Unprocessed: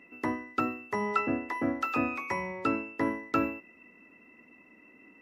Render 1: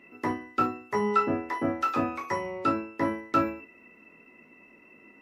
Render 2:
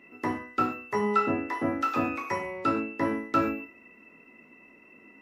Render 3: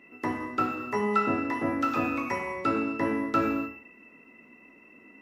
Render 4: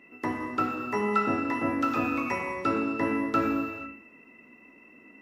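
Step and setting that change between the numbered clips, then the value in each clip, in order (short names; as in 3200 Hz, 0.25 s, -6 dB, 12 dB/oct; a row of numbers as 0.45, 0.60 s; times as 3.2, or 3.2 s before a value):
non-linear reverb, gate: 90, 160, 330, 520 ms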